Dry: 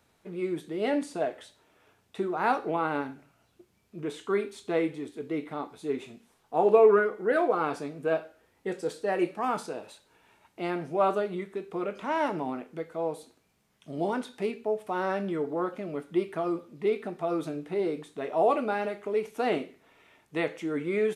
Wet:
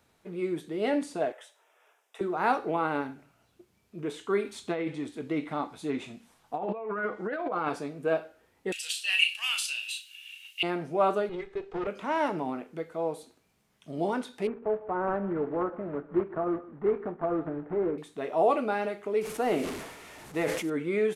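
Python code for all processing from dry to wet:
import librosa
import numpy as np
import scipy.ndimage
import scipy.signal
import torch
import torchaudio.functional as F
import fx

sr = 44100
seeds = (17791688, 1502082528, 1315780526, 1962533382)

y = fx.chain(x, sr, fx.highpass(hz=500.0, slope=24),
    fx.peak_eq(hz=4300.0, db=-14.0, octaves=0.26), at=(1.32, 2.21))
y = fx.chain(y, sr, fx.env_lowpass_down(base_hz=2800.0, full_db=-18.5),
    fx.peak_eq(hz=410.0, db=-9.5, octaves=0.31),
    fx.over_compress(threshold_db=-31.0, ratio=-1.0), at=(4.45, 7.69))
y = fx.chain(y, sr, fx.highpass_res(hz=2800.0, q=12.0),
    fx.tilt_eq(slope=4.0),
    fx.doubler(ms=36.0, db=-7.5), at=(8.72, 10.63))
y = fx.chain(y, sr, fx.lower_of_two(delay_ms=2.4),
    fx.air_absorb(metres=110.0), at=(11.29, 11.87))
y = fx.chain(y, sr, fx.block_float(bits=3),
    fx.lowpass(hz=1500.0, slope=24),
    fx.echo_single(ms=153, db=-18.0), at=(14.47, 17.98))
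y = fx.chain(y, sr, fx.delta_mod(bps=64000, step_db=-40.5),
    fx.peak_eq(hz=4300.0, db=-4.0, octaves=2.0),
    fx.sustainer(db_per_s=52.0), at=(19.21, 20.7))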